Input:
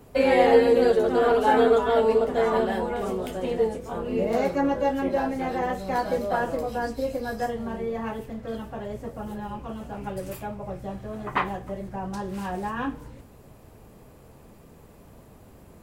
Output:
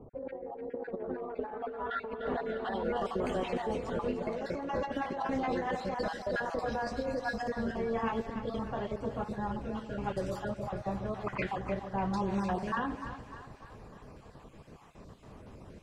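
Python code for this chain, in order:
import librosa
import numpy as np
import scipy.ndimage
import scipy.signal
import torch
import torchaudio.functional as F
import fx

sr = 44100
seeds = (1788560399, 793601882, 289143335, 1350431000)

y = fx.spec_dropout(x, sr, seeds[0], share_pct=31)
y = fx.peak_eq(y, sr, hz=1100.0, db=3.5, octaves=0.61)
y = fx.over_compress(y, sr, threshold_db=-30.0, ratio=-1.0)
y = fx.echo_split(y, sr, split_hz=630.0, low_ms=141, high_ms=298, feedback_pct=52, wet_db=-10.0)
y = fx.filter_sweep_lowpass(y, sr, from_hz=630.0, to_hz=5500.0, start_s=0.51, end_s=3.21, q=1.0)
y = y * 10.0 ** (-5.0 / 20.0)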